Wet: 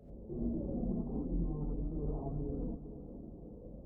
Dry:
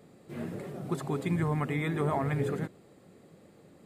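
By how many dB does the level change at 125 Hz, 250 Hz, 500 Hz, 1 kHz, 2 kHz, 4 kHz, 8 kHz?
-8.5 dB, -4.5 dB, -9.5 dB, -18.0 dB, under -40 dB, under -35 dB, under -25 dB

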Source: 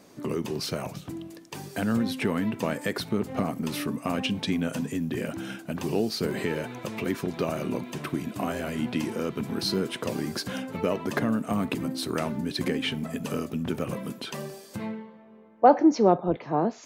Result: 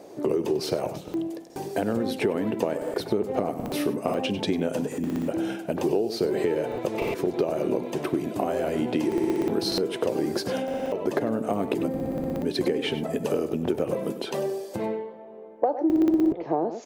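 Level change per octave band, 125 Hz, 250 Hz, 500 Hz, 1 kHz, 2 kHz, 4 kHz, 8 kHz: -2.5, +1.5, +4.0, -3.0, -2.5, -1.0, -1.5 dB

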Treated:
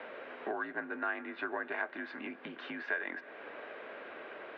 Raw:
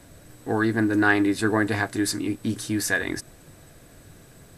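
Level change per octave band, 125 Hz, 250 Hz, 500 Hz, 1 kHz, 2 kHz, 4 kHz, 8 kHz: -33.5 dB, -21.5 dB, -13.0 dB, -10.0 dB, -11.0 dB, -17.5 dB, under -40 dB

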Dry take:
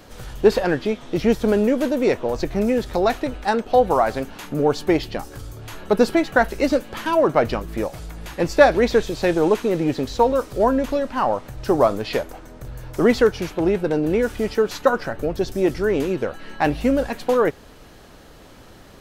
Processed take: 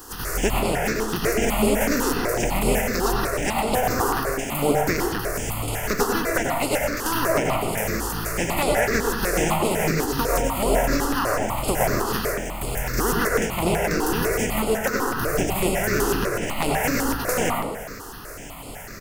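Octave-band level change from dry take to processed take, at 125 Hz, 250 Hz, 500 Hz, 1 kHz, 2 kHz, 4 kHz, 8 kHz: +2.0, -4.0, -5.0, -1.0, +2.0, +3.5, +13.0 dB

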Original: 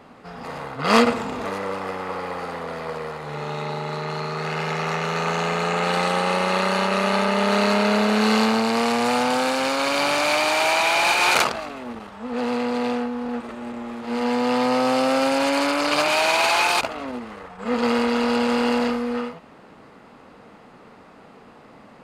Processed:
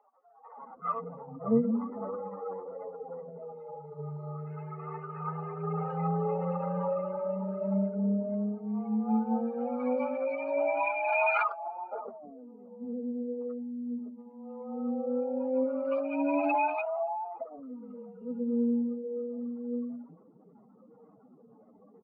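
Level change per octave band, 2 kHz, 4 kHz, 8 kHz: -16.0 dB, under -35 dB, under -40 dB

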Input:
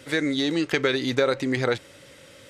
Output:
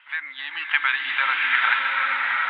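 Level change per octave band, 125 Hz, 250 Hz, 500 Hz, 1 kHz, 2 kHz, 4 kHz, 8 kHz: under -30 dB, under -25 dB, -24.0 dB, +10.0 dB, +10.0 dB, +1.0 dB, under -30 dB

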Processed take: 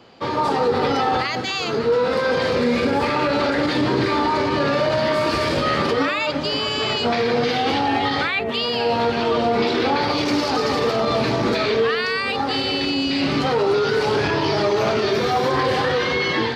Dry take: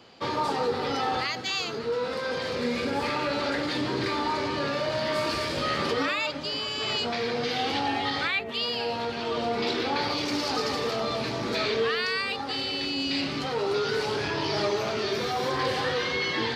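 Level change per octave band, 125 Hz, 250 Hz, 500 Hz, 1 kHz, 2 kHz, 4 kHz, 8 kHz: +9.5, +9.5, +9.0, +8.5, +6.5, +5.0, +3.5 dB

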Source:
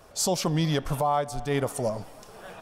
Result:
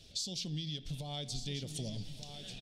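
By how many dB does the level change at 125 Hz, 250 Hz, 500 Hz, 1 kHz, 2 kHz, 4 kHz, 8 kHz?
-10.5, -13.0, -21.0, -24.5, -16.5, -3.5, -11.5 dB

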